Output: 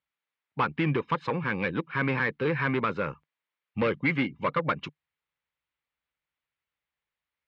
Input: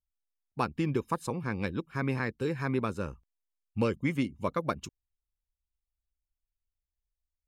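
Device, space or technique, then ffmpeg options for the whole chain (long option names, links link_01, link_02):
overdrive pedal into a guitar cabinet: -filter_complex "[0:a]asplit=2[link_01][link_02];[link_02]highpass=frequency=720:poles=1,volume=21dB,asoftclip=type=tanh:threshold=-15dB[link_03];[link_01][link_03]amix=inputs=2:normalize=0,lowpass=frequency=2100:poles=1,volume=-6dB,highpass=98,equalizer=frequency=150:width_type=q:width=4:gain=6,equalizer=frequency=230:width_type=q:width=4:gain=-3,equalizer=frequency=370:width_type=q:width=4:gain=-4,equalizer=frequency=690:width_type=q:width=4:gain=-6,equalizer=frequency=2100:width_type=q:width=4:gain=4,lowpass=frequency=3800:width=0.5412,lowpass=frequency=3800:width=1.3066"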